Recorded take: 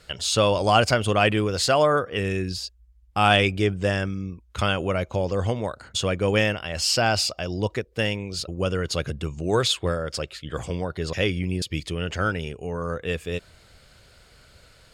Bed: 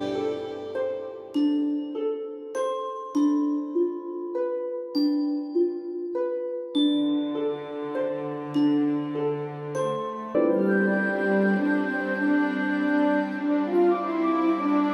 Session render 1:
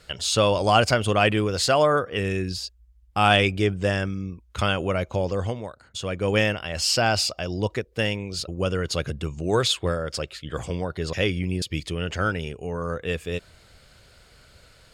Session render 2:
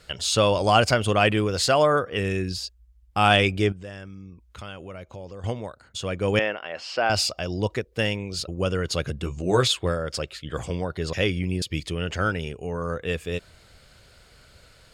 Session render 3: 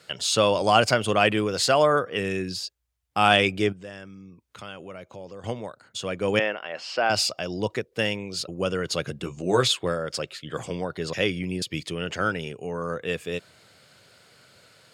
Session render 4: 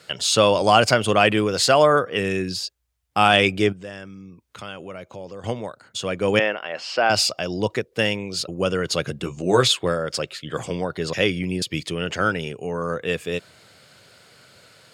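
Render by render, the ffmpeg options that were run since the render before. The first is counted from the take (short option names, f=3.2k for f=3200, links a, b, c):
-filter_complex "[0:a]asplit=3[a][b][c];[a]atrim=end=5.73,asetpts=PTS-STARTPTS,afade=t=out:st=5.27:d=0.46:silence=0.354813[d];[b]atrim=start=5.73:end=5.92,asetpts=PTS-STARTPTS,volume=-9dB[e];[c]atrim=start=5.92,asetpts=PTS-STARTPTS,afade=t=in:d=0.46:silence=0.354813[f];[d][e][f]concat=n=3:v=0:a=1"
-filter_complex "[0:a]asettb=1/sr,asplit=3[a][b][c];[a]atrim=end=3.724[d];[b]atrim=start=3.72:end=5.44,asetpts=PTS-STARTPTS,afade=t=in:d=0.004:c=qsin,afade=t=out:st=1.716:d=0.004:c=qsin,acompressor=threshold=-47dB:ratio=2:attack=3.2:release=140:knee=1:detection=peak[e];[c]atrim=start=5.436[f];[d][e]acrossfade=d=0.004:c1=hsin:c2=qsin[g];[g][f]acrossfade=d=0.004:c1=qsin:c2=hsin,asettb=1/sr,asplit=3[h][i][j];[h]atrim=end=6.394[k];[i]atrim=start=6.39:end=7.1,asetpts=PTS-STARTPTS,afade=t=in:d=0.004:c=qsin,afade=t=out:st=0.706:d=0.004:c=qsin,highpass=380,lowpass=2.3k[l];[j]atrim=start=7.096[m];[k][l]acrossfade=d=0.004:c1=hsin:c2=qsin[n];[n][m]acrossfade=d=0.004:c1=qsin:c2=hsin,asettb=1/sr,asplit=3[o][p][q];[o]atrim=end=9.224[r];[p]atrim=start=9.22:end=9.68,asetpts=PTS-STARTPTS,afade=t=in:d=0.004:c=qsin,afade=t=out:st=0.456:d=0.004:c=qsin,asplit=2[s][t];[t]adelay=16,volume=-5dB[u];[s][u]amix=inputs=2:normalize=0,atrim=end_sample=20286[v];[q]atrim=start=9.676[w];[r][v]acrossfade=d=0.004:c1=hsin:c2=qsin[x];[x][w]acrossfade=d=0.004:c1=qsin:c2=hsin"
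-af "highpass=f=110:w=0.5412,highpass=f=110:w=1.3066,lowshelf=f=150:g=-4"
-af "volume=4dB,alimiter=limit=-2dB:level=0:latency=1"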